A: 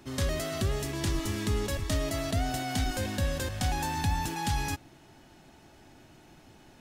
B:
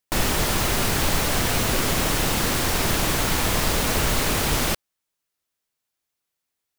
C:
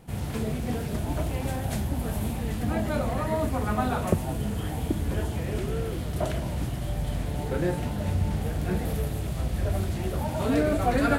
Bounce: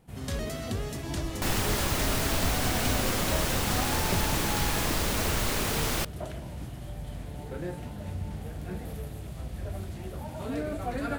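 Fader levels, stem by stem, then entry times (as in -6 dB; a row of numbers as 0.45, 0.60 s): -4.0, -6.5, -9.0 dB; 0.10, 1.30, 0.00 s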